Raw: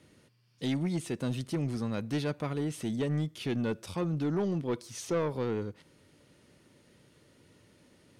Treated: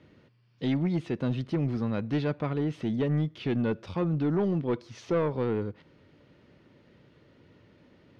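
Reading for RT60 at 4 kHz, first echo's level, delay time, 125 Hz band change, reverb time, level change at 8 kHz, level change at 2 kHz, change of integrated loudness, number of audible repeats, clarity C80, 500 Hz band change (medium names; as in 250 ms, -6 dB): no reverb, no echo, no echo, +4.0 dB, no reverb, under -10 dB, +1.5 dB, +3.5 dB, no echo, no reverb, +3.5 dB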